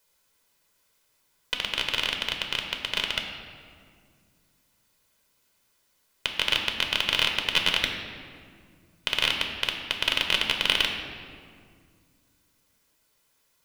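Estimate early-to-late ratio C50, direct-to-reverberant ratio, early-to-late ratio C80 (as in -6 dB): 5.0 dB, 2.5 dB, 6.5 dB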